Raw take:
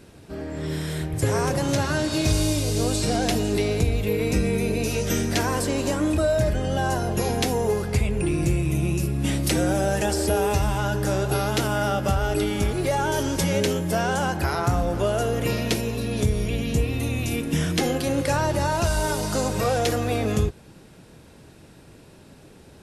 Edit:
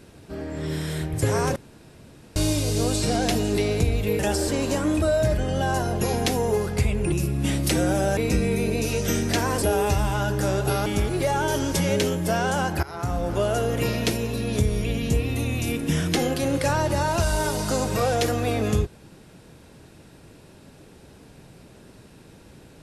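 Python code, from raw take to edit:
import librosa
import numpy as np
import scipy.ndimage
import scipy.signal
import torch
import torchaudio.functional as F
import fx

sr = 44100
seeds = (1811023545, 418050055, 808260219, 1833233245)

y = fx.edit(x, sr, fx.room_tone_fill(start_s=1.56, length_s=0.8),
    fx.swap(start_s=4.19, length_s=1.45, other_s=9.97, other_length_s=0.29),
    fx.cut(start_s=8.28, length_s=0.64),
    fx.cut(start_s=11.5, length_s=1.0),
    fx.fade_in_from(start_s=14.47, length_s=0.72, curve='qsin', floor_db=-18.5), tone=tone)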